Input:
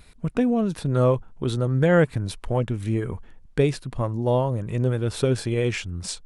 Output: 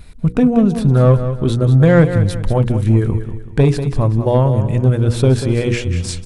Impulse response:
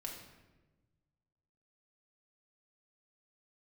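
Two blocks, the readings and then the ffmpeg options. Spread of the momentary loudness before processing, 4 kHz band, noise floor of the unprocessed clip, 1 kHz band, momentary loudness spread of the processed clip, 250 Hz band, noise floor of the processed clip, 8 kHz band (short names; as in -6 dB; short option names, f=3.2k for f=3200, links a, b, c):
9 LU, +5.0 dB, -49 dBFS, +6.0 dB, 7 LU, +9.5 dB, -32 dBFS, n/a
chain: -filter_complex "[0:a]lowshelf=f=280:g=10,bandreject=f=60:t=h:w=6,bandreject=f=120:t=h:w=6,bandreject=f=180:t=h:w=6,bandreject=f=240:t=h:w=6,bandreject=f=300:t=h:w=6,bandreject=f=360:t=h:w=6,bandreject=f=420:t=h:w=6,bandreject=f=480:t=h:w=6,acontrast=84,aeval=exprs='0.891*(cos(1*acos(clip(val(0)/0.891,-1,1)))-cos(1*PI/2))+0.0158*(cos(7*acos(clip(val(0)/0.891,-1,1)))-cos(7*PI/2))':c=same,asplit=2[a][b];[b]aecho=0:1:190|380|570|760:0.316|0.117|0.0433|0.016[c];[a][c]amix=inputs=2:normalize=0,volume=-1.5dB"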